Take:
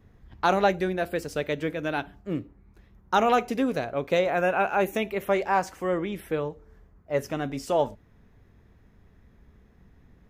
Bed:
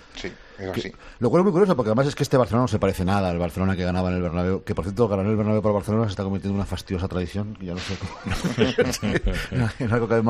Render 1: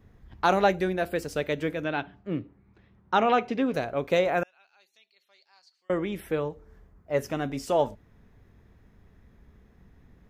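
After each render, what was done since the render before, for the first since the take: 1.84–3.74 Chebyshev band-pass 100–3500 Hz; 4.43–5.9 band-pass 4400 Hz, Q 20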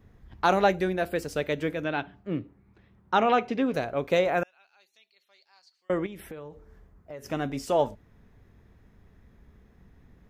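6.06–7.26 compressor 8:1, threshold -37 dBFS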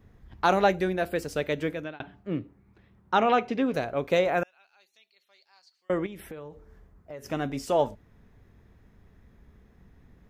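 1.59–2 fade out equal-power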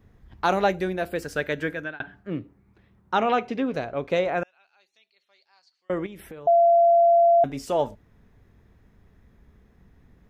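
1.22–2.3 bell 1600 Hz +12.5 dB 0.34 oct; 3.6–5.97 air absorption 56 m; 6.47–7.44 bleep 683 Hz -13.5 dBFS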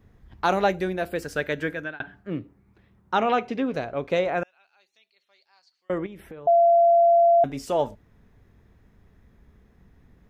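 5.98–6.49 high shelf 3600 Hz -9 dB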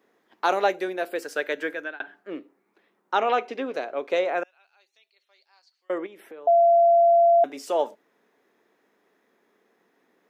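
HPF 320 Hz 24 dB/oct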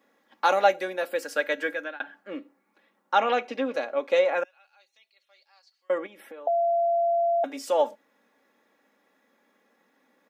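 bell 340 Hz -9.5 dB 0.28 oct; comb 3.6 ms, depth 61%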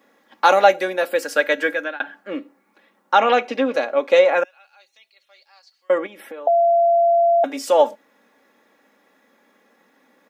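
gain +8 dB; limiter -1 dBFS, peak gain reduction 2 dB

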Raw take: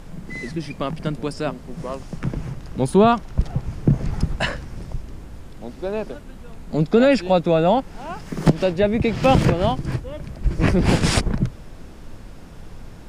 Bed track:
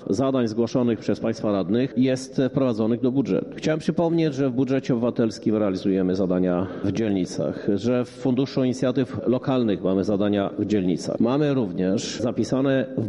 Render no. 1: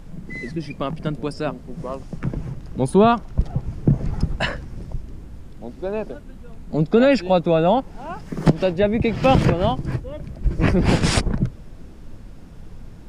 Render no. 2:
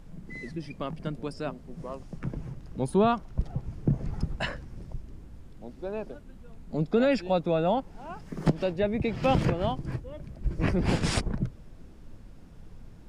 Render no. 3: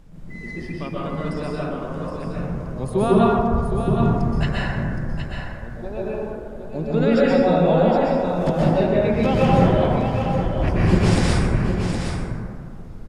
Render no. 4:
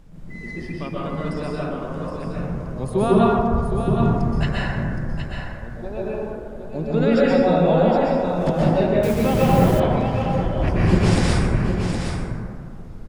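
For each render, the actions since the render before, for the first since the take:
denoiser 6 dB, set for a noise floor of -39 dBFS
gain -8.5 dB
echo 0.768 s -7 dB; plate-style reverb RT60 2.1 s, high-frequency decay 0.35×, pre-delay 0.11 s, DRR -7 dB
9.03–9.8 level-crossing sampler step -28.5 dBFS

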